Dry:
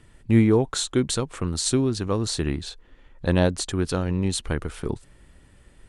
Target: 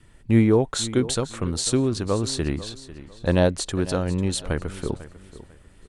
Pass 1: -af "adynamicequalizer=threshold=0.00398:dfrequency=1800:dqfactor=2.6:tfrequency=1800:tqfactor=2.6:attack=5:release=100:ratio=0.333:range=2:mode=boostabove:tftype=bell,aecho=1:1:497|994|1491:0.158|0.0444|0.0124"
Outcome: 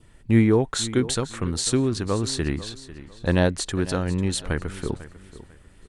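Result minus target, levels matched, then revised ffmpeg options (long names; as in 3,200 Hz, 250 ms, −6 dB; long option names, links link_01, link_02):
2,000 Hz band +3.0 dB
-af "adynamicequalizer=threshold=0.00398:dfrequency=580:dqfactor=2.6:tfrequency=580:tqfactor=2.6:attack=5:release=100:ratio=0.333:range=2:mode=boostabove:tftype=bell,aecho=1:1:497|994|1491:0.158|0.0444|0.0124"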